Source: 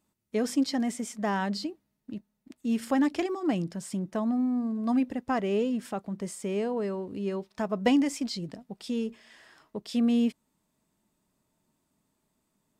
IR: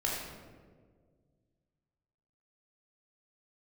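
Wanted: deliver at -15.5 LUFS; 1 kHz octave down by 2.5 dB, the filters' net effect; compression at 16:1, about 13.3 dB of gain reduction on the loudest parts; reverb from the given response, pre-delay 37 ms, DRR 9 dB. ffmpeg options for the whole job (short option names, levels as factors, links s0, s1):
-filter_complex "[0:a]equalizer=f=1000:t=o:g=-3.5,acompressor=threshold=0.0224:ratio=16,asplit=2[s0][s1];[1:a]atrim=start_sample=2205,adelay=37[s2];[s1][s2]afir=irnorm=-1:irlink=0,volume=0.168[s3];[s0][s3]amix=inputs=2:normalize=0,volume=12.6"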